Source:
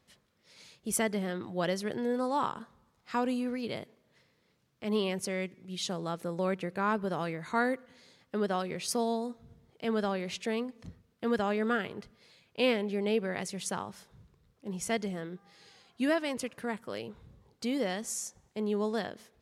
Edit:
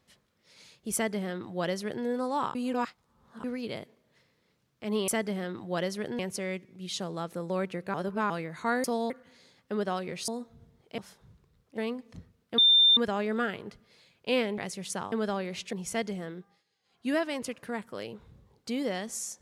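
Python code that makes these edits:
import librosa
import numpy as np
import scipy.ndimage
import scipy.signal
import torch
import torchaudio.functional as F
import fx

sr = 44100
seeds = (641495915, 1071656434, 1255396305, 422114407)

y = fx.edit(x, sr, fx.duplicate(start_s=0.94, length_s=1.11, to_s=5.08),
    fx.reverse_span(start_s=2.55, length_s=0.89),
    fx.reverse_span(start_s=6.83, length_s=0.36),
    fx.move(start_s=8.91, length_s=0.26, to_s=7.73),
    fx.swap(start_s=9.87, length_s=0.61, other_s=13.88, other_length_s=0.8),
    fx.insert_tone(at_s=11.28, length_s=0.39, hz=3590.0, db=-16.5),
    fx.cut(start_s=12.89, length_s=0.45),
    fx.fade_down_up(start_s=15.31, length_s=0.75, db=-21.0, fade_s=0.28), tone=tone)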